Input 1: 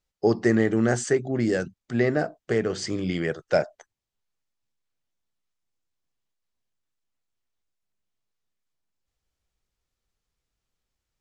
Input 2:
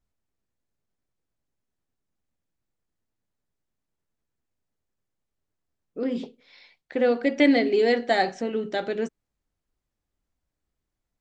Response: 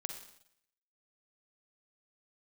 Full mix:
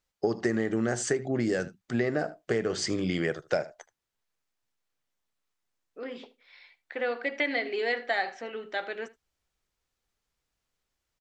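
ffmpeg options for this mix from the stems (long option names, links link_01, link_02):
-filter_complex "[0:a]volume=1.5dB,asplit=2[link_01][link_02];[link_02]volume=-20dB[link_03];[1:a]bandpass=frequency=1700:width_type=q:width=0.82:csg=0,volume=1dB,asplit=2[link_04][link_05];[link_05]volume=-20.5dB[link_06];[link_03][link_06]amix=inputs=2:normalize=0,aecho=0:1:77:1[link_07];[link_01][link_04][link_07]amix=inputs=3:normalize=0,lowshelf=frequency=200:gain=-5,acompressor=threshold=-23dB:ratio=10"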